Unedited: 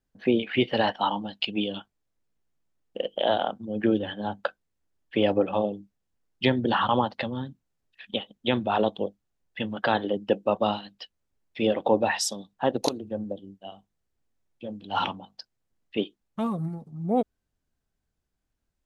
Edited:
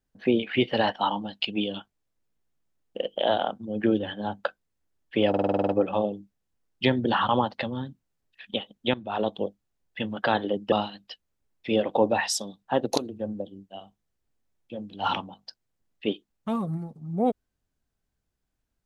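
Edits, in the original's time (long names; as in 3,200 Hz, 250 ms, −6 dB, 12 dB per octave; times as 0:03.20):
0:05.29: stutter 0.05 s, 9 plays
0:08.54–0:08.98: fade in linear, from −16.5 dB
0:10.32–0:10.63: remove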